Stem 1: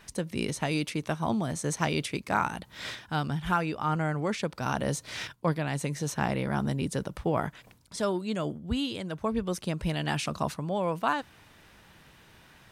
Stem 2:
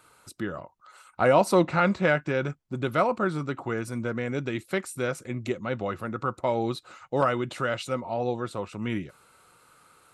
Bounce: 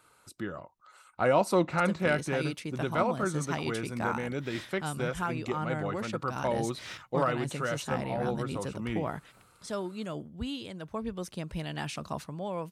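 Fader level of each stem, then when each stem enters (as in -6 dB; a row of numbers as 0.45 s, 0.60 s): -6.0 dB, -4.5 dB; 1.70 s, 0.00 s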